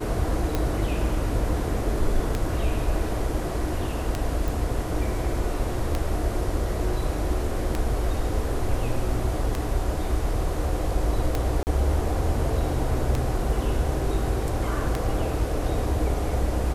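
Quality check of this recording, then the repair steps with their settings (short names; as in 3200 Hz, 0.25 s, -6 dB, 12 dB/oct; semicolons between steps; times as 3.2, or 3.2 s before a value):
tick 33 1/3 rpm -11 dBFS
4.48 pop
11.63–11.67 gap 39 ms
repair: de-click; interpolate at 11.63, 39 ms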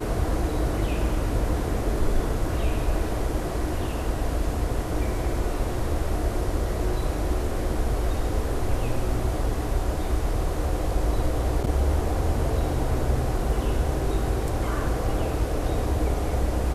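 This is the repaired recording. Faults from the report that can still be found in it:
none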